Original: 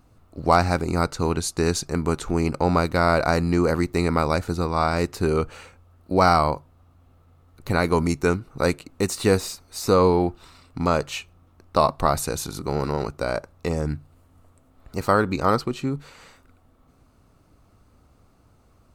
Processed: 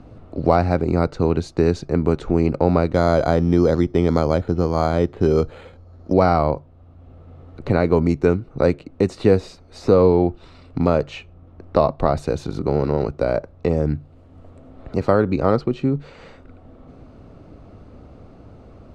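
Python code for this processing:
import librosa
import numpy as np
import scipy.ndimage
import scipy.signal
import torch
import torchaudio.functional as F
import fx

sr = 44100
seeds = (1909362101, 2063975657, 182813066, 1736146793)

y = fx.resample_bad(x, sr, factor=8, down='filtered', up='hold', at=(2.94, 6.13))
y = scipy.signal.sosfilt(scipy.signal.butter(2, 3600.0, 'lowpass', fs=sr, output='sos'), y)
y = fx.low_shelf_res(y, sr, hz=780.0, db=6.0, q=1.5)
y = fx.band_squash(y, sr, depth_pct=40)
y = y * 10.0 ** (-2.0 / 20.0)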